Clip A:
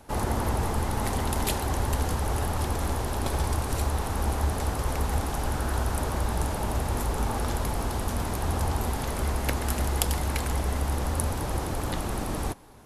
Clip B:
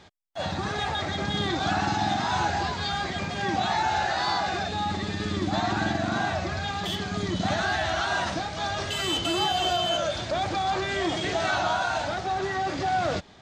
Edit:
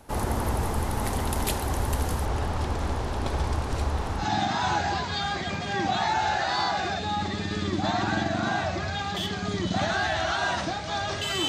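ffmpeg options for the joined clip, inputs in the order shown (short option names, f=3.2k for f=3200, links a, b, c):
-filter_complex "[0:a]asettb=1/sr,asplit=3[a][b][c];[a]atrim=end=2.254[d];[b]atrim=start=2.25:end=4.27,asetpts=PTS-STARTPTS,afade=t=in:d=0.004:c=qsin,afade=t=out:st=2.016:d=0.004:c=qsin,lowpass=5.8k[e];[c]atrim=start=4.266[f];[d][e]acrossfade=d=0.004:c1=hsin:c2=qsin[g];[g][f]acrossfade=d=0.004:c1=qsin:c2=hsin,apad=whole_dur=11.48,atrim=end=11.48,atrim=end=4.27,asetpts=PTS-STARTPTS[h];[1:a]atrim=start=1.84:end=9.17,asetpts=PTS-STARTPTS[i];[h][i]acrossfade=d=0.12:c1=tri:c2=tri"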